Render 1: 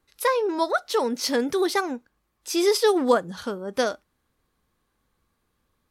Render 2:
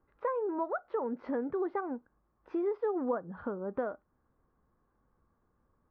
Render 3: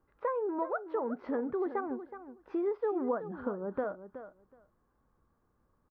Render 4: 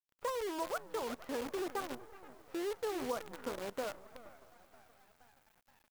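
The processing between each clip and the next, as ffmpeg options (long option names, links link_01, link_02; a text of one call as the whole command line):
ffmpeg -i in.wav -af "lowpass=frequency=1400:width=0.5412,lowpass=frequency=1400:width=1.3066,acompressor=threshold=-35dB:ratio=2.5" out.wav
ffmpeg -i in.wav -af "aecho=1:1:371|742:0.251|0.0377" out.wav
ffmpeg -i in.wav -filter_complex "[0:a]aemphasis=mode=production:type=bsi,asplit=7[link_01][link_02][link_03][link_04][link_05][link_06][link_07];[link_02]adelay=474,afreqshift=75,volume=-15.5dB[link_08];[link_03]adelay=948,afreqshift=150,volume=-20.1dB[link_09];[link_04]adelay=1422,afreqshift=225,volume=-24.7dB[link_10];[link_05]adelay=1896,afreqshift=300,volume=-29.2dB[link_11];[link_06]adelay=2370,afreqshift=375,volume=-33.8dB[link_12];[link_07]adelay=2844,afreqshift=450,volume=-38.4dB[link_13];[link_01][link_08][link_09][link_10][link_11][link_12][link_13]amix=inputs=7:normalize=0,acrusher=bits=7:dc=4:mix=0:aa=0.000001,volume=-4dB" out.wav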